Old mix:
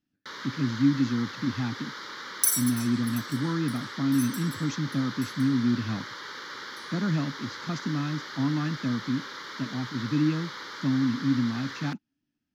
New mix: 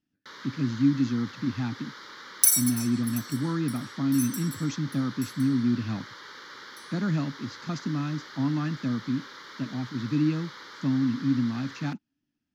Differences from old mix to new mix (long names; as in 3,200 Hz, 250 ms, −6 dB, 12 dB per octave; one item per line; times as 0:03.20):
first sound −5.0 dB
second sound +4.0 dB